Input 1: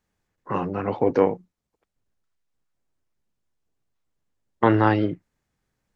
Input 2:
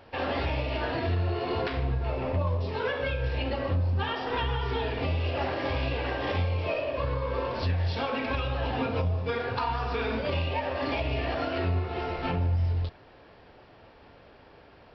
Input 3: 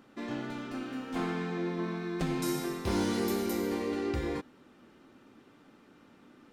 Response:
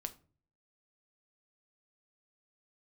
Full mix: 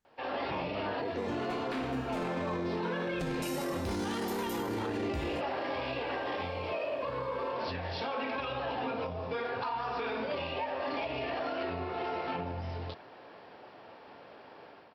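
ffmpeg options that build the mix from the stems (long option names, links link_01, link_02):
-filter_complex "[0:a]volume=-6.5dB[link_01];[1:a]highpass=190,equalizer=frequency=870:width=1.1:gain=4,dynaudnorm=framelen=110:gausssize=5:maxgain=11dB,adelay=50,volume=-10.5dB[link_02];[2:a]adelay=1000,volume=1dB[link_03];[link_01][link_02]amix=inputs=2:normalize=0,acompressor=threshold=-33dB:ratio=2.5,volume=0dB[link_04];[link_03][link_04]amix=inputs=2:normalize=0,alimiter=level_in=2.5dB:limit=-24dB:level=0:latency=1:release=10,volume=-2.5dB"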